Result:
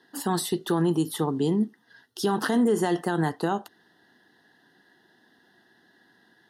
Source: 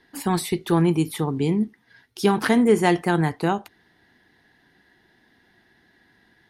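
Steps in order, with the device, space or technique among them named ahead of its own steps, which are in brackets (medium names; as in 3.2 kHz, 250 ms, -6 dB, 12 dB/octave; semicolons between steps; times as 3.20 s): PA system with an anti-feedback notch (high-pass 180 Hz 12 dB/octave; Butterworth band-stop 2.3 kHz, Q 2.6; peak limiter -15 dBFS, peak gain reduction 9.5 dB)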